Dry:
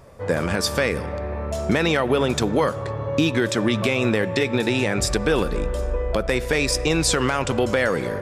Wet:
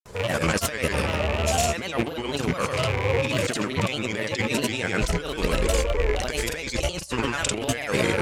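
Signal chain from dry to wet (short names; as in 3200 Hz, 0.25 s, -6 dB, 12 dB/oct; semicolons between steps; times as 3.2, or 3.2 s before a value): rattling part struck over -34 dBFS, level -26 dBFS; high shelf 2100 Hz +9.5 dB; negative-ratio compressor -23 dBFS, ratio -0.5; grains, pitch spread up and down by 3 st; bell 7100 Hz +3.5 dB 0.22 oct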